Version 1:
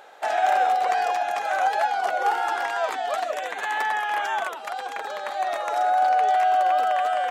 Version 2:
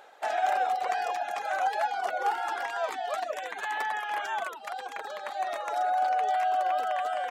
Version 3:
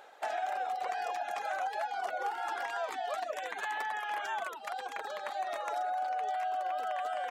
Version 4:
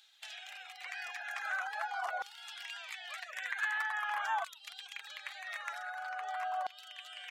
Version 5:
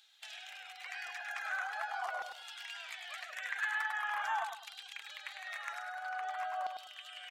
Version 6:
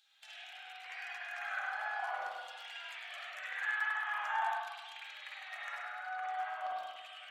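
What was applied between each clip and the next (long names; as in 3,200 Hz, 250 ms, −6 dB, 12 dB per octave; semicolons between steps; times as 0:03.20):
reverb reduction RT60 0.63 s; level −4.5 dB
downward compressor, threshold −30 dBFS, peak gain reduction 8.5 dB; level −1.5 dB
auto-filter high-pass saw down 0.45 Hz 940–3,800 Hz; level −2 dB
repeating echo 102 ms, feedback 28%, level −7 dB; level −1.5 dB
spring reverb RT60 1.2 s, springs 48/58 ms, chirp 55 ms, DRR −6.5 dB; level −7 dB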